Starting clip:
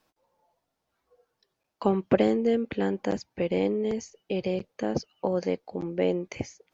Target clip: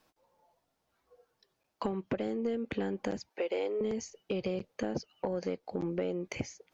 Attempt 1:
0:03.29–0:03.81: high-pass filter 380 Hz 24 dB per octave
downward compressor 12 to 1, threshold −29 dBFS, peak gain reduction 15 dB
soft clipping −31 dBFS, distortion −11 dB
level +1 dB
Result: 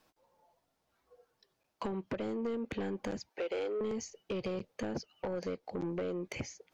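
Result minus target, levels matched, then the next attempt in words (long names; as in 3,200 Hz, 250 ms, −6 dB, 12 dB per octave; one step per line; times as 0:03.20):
soft clipping: distortion +10 dB
0:03.29–0:03.81: high-pass filter 380 Hz 24 dB per octave
downward compressor 12 to 1, threshold −29 dBFS, peak gain reduction 15 dB
soft clipping −22 dBFS, distortion −21 dB
level +1 dB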